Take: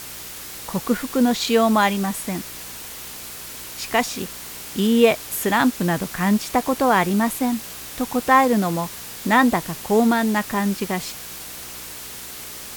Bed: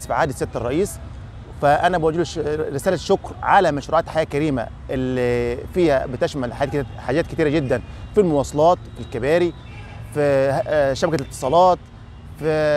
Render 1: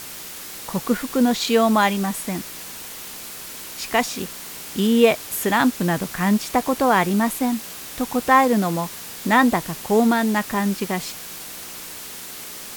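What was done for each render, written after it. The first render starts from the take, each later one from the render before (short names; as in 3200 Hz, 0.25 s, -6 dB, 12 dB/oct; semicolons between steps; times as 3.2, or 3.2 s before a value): de-hum 60 Hz, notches 2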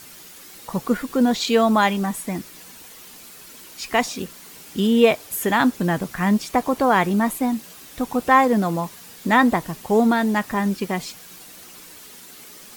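denoiser 9 dB, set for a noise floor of -36 dBFS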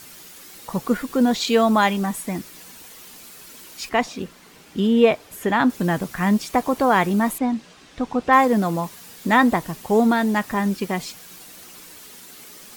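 3.89–5.7 LPF 2700 Hz 6 dB/oct; 7.38–8.33 air absorption 110 m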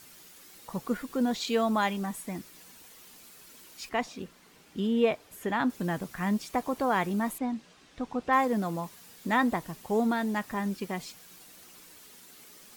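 gain -9.5 dB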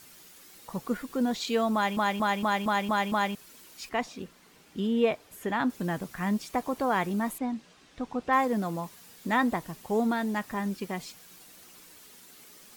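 1.74 stutter in place 0.23 s, 7 plays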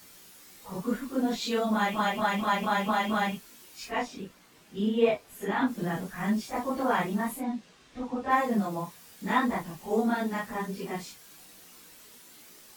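phase scrambler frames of 0.1 s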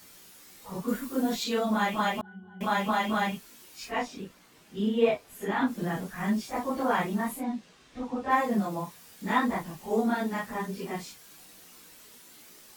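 0.88–1.44 high shelf 8500 Hz +10 dB; 2.21–2.61 octave resonator F#, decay 0.59 s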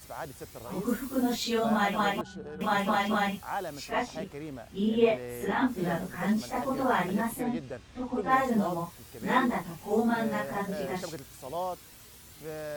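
add bed -20 dB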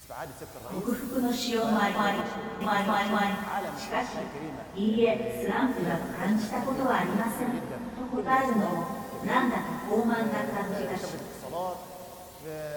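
plate-style reverb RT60 4.1 s, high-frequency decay 0.6×, DRR 6.5 dB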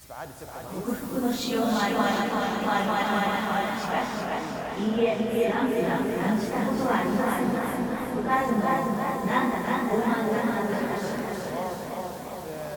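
feedback echo 0.374 s, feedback 44%, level -4.5 dB; warbling echo 0.338 s, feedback 69%, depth 95 cents, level -8.5 dB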